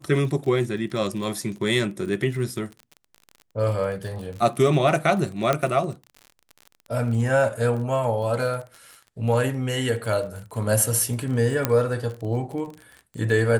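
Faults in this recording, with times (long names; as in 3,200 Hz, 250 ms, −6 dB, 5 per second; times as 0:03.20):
surface crackle 35 per second −32 dBFS
0:05.53: click −8 dBFS
0:11.65: click −5 dBFS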